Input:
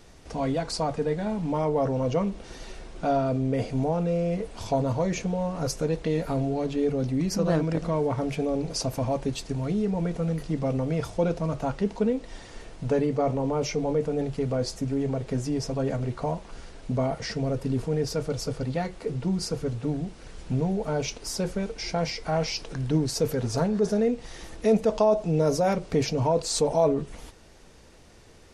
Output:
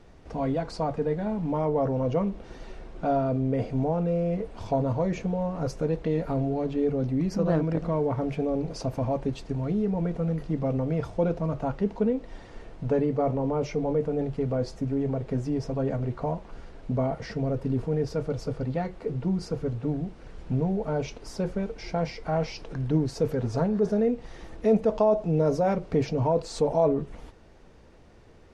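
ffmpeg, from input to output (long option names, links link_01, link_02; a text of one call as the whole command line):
ffmpeg -i in.wav -af "lowpass=frequency=1500:poles=1" out.wav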